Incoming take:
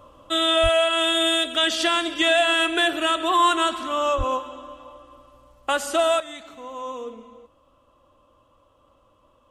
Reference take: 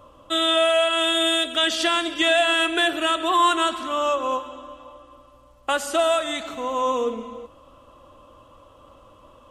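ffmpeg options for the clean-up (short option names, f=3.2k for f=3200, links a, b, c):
-filter_complex "[0:a]asplit=3[a][b][c];[a]afade=t=out:st=0.62:d=0.02[d];[b]highpass=f=140:w=0.5412,highpass=f=140:w=1.3066,afade=t=in:st=0.62:d=0.02,afade=t=out:st=0.74:d=0.02[e];[c]afade=t=in:st=0.74:d=0.02[f];[d][e][f]amix=inputs=3:normalize=0,asplit=3[g][h][i];[g]afade=t=out:st=4.17:d=0.02[j];[h]highpass=f=140:w=0.5412,highpass=f=140:w=1.3066,afade=t=in:st=4.17:d=0.02,afade=t=out:st=4.29:d=0.02[k];[i]afade=t=in:st=4.29:d=0.02[l];[j][k][l]amix=inputs=3:normalize=0,asetnsamples=n=441:p=0,asendcmd='6.2 volume volume 10dB',volume=0dB"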